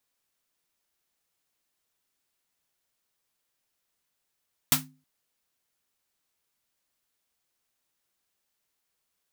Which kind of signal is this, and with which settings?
snare drum length 0.32 s, tones 150 Hz, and 260 Hz, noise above 700 Hz, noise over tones 12 dB, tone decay 0.39 s, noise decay 0.18 s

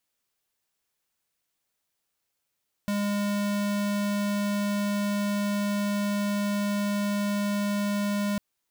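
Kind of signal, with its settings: tone square 204 Hz -27 dBFS 5.50 s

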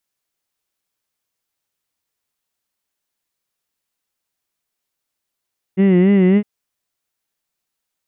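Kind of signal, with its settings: formant vowel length 0.66 s, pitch 185 Hz, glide +1 st, vibrato 3.6 Hz, vibrato depth 1.05 st, F1 300 Hz, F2 2 kHz, F3 2.8 kHz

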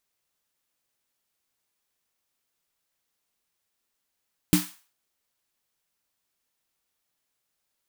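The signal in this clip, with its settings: snare drum length 0.40 s, tones 180 Hz, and 300 Hz, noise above 840 Hz, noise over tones -8 dB, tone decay 0.20 s, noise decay 0.40 s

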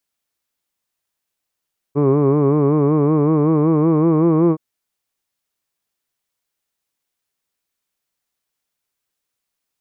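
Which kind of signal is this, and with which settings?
formant vowel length 2.62 s, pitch 139 Hz, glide +3 st, F1 380 Hz, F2 1.1 kHz, F3 2.3 kHz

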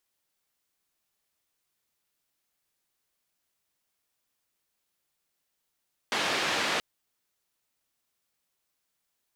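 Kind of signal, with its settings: noise band 210–3200 Hz, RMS -28.5 dBFS 0.68 s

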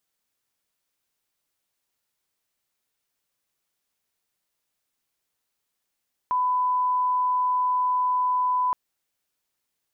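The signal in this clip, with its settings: line-up tone -20 dBFS 2.42 s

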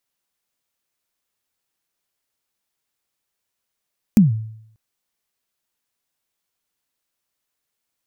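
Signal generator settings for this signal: kick drum length 0.59 s, from 230 Hz, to 110 Hz, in 146 ms, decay 0.71 s, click on, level -5 dB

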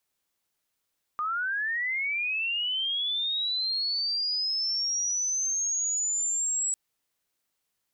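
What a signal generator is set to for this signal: sweep linear 1.2 kHz -> 7.8 kHz -26.5 dBFS -> -25 dBFS 5.55 s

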